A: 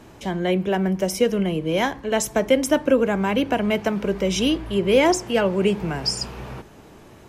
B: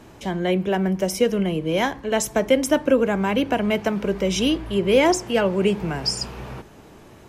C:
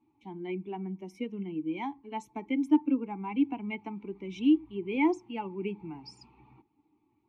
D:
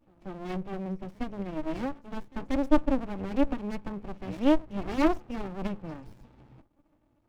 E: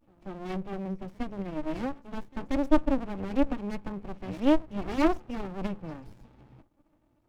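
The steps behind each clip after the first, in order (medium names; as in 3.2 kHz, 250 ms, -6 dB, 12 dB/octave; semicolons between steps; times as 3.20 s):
no audible change
expander on every frequency bin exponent 1.5; vowel filter u; trim +3 dB
pre-echo 186 ms -23.5 dB; sliding maximum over 65 samples; trim +6 dB
vibrato 0.45 Hz 26 cents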